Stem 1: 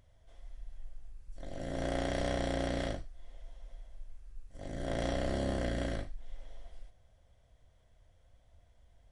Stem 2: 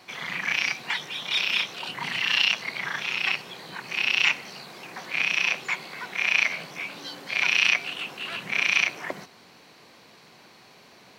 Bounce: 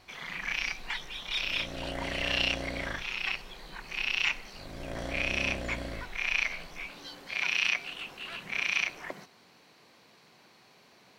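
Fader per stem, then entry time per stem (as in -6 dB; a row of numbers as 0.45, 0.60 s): -3.5, -7.0 dB; 0.00, 0.00 s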